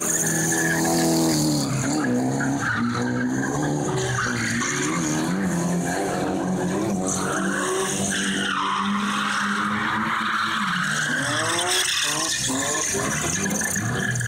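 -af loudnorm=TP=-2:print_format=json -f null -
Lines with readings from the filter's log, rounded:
"input_i" : "-22.3",
"input_tp" : "-13.4",
"input_lra" : "2.2",
"input_thresh" : "-32.3",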